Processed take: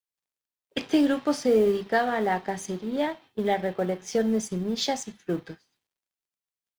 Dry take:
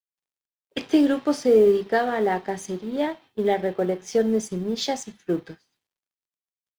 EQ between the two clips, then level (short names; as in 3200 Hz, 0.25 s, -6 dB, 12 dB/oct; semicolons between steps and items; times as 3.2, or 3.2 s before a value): dynamic EQ 390 Hz, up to -6 dB, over -32 dBFS, Q 1.7; 0.0 dB